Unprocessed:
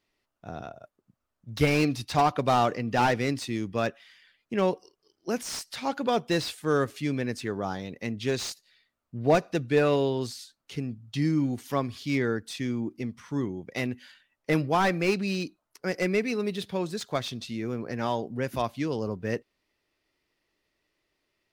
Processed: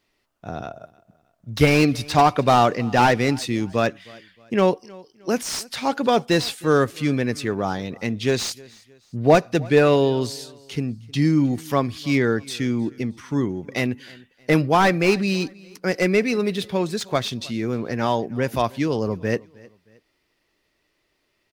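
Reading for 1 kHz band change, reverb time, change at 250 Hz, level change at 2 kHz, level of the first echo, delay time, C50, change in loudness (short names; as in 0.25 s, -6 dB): +7.0 dB, none, +7.0 dB, +7.0 dB, -23.5 dB, 0.312 s, none, +7.0 dB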